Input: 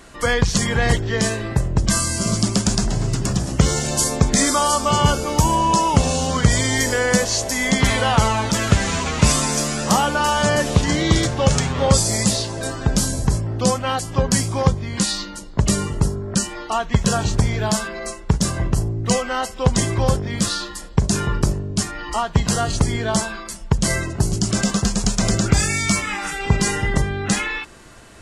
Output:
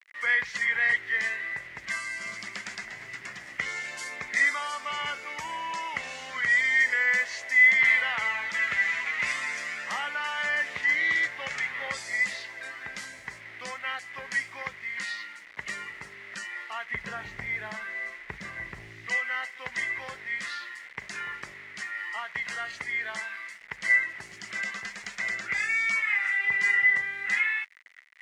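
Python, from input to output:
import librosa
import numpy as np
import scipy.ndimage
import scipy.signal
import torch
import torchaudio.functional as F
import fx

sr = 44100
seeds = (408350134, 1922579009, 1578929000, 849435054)

y = fx.tilt_eq(x, sr, slope=-3.0, at=(16.91, 19.07))
y = fx.quant_dither(y, sr, seeds[0], bits=6, dither='none')
y = fx.bandpass_q(y, sr, hz=2000.0, q=10.0)
y = y * 10.0 ** (8.0 / 20.0)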